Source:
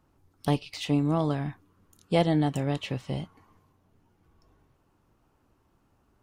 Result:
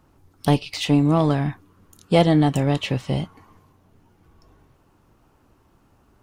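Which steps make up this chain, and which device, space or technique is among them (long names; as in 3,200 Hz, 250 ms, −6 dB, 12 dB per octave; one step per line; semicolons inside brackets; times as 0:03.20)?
parallel distortion (in parallel at −8.5 dB: hard clipping −26.5 dBFS, distortion −6 dB)
on the sum: level +6 dB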